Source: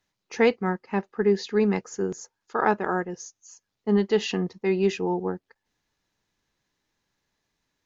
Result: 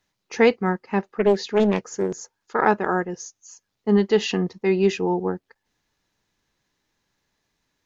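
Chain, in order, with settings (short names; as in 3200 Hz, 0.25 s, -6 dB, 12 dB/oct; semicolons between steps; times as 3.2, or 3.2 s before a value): 1.12–2.66 Doppler distortion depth 0.48 ms; gain +3.5 dB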